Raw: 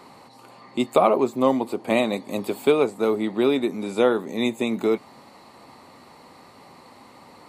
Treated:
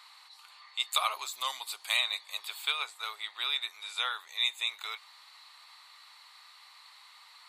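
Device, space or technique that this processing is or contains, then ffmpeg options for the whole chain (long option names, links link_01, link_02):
headphones lying on a table: -filter_complex "[0:a]highpass=frequency=1200:width=0.5412,highpass=frequency=1200:width=1.3066,equalizer=frequency=3700:width_type=o:width=0.58:gain=9.5,asettb=1/sr,asplit=3[link_01][link_02][link_03];[link_01]atrim=end=0.924[link_04];[link_02]atrim=start=0.92:end=1.97,asetpts=PTS-STARTPTS,afade=type=in:duration=0.004:curve=qsin,afade=type=out:start_time=1.046:duration=0.004:curve=qsin,bass=frequency=250:gain=10,treble=frequency=4000:gain=11[link_05];[link_03]atrim=start=1.966[link_06];[link_04][link_05]acrossfade=duration=0.004:curve1=hsin:curve2=qsin[link_07];[link_07][link_06]acrossfade=duration=0.004:curve1=qsin:curve2=hsin,volume=-3.5dB"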